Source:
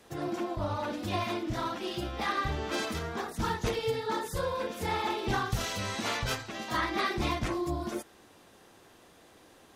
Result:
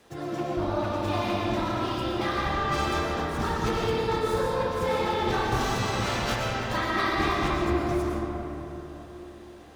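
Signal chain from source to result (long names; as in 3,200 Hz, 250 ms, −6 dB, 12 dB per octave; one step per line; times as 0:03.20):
running median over 3 samples
comb and all-pass reverb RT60 3.8 s, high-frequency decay 0.4×, pre-delay 75 ms, DRR −3.5 dB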